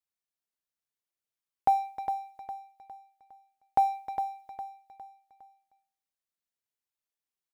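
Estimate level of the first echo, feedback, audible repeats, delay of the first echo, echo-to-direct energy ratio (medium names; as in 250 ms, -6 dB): -8.5 dB, 40%, 4, 408 ms, -7.5 dB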